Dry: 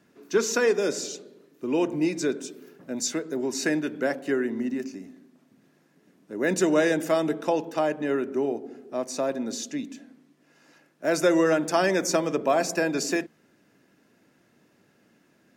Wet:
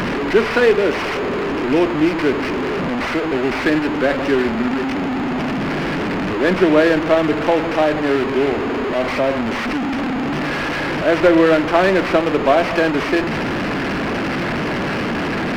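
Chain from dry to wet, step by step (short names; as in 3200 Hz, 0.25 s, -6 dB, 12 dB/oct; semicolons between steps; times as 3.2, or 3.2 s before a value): delta modulation 16 kbps, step -23 dBFS; running maximum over 5 samples; gain +8.5 dB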